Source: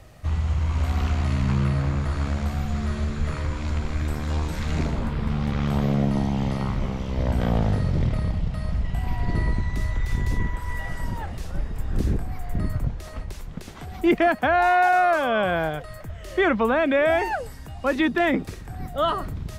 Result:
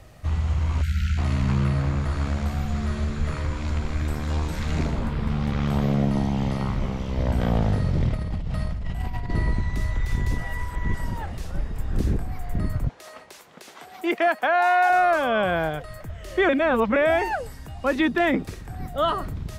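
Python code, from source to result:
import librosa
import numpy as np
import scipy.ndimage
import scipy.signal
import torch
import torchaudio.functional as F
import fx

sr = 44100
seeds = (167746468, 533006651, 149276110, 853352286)

y = fx.spec_erase(x, sr, start_s=0.82, length_s=0.36, low_hz=210.0, high_hz=1300.0)
y = fx.over_compress(y, sr, threshold_db=-27.0, ratio=-1.0, at=(8.15, 9.3))
y = fx.highpass(y, sr, hz=460.0, slope=12, at=(12.89, 14.9))
y = fx.edit(y, sr, fx.reverse_span(start_s=10.38, length_s=0.56),
    fx.reverse_span(start_s=16.49, length_s=0.47), tone=tone)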